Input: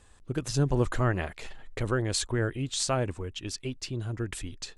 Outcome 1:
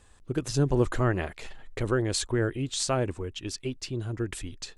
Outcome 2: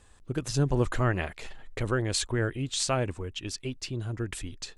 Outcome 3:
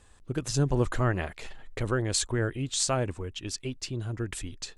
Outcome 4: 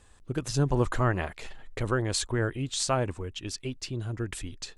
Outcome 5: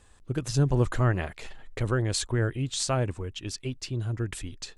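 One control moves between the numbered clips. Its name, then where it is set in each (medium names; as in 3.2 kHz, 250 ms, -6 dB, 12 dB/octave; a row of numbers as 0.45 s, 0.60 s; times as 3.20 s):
dynamic bell, frequency: 360 Hz, 2.5 kHz, 7.3 kHz, 990 Hz, 120 Hz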